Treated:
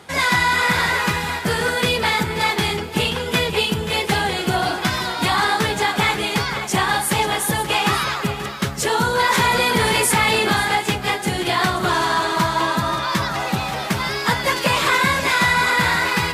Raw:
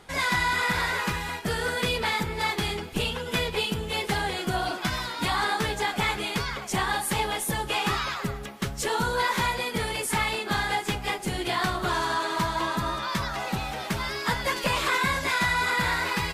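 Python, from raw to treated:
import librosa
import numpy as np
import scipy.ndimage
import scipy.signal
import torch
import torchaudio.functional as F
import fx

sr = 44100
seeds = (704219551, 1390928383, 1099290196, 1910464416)

p1 = scipy.signal.sosfilt(scipy.signal.butter(4, 73.0, 'highpass', fs=sr, output='sos'), x)
p2 = p1 + fx.echo_single(p1, sr, ms=532, db=-11.5, dry=0)
p3 = fx.env_flatten(p2, sr, amount_pct=70, at=(9.29, 10.52))
y = p3 * librosa.db_to_amplitude(7.5)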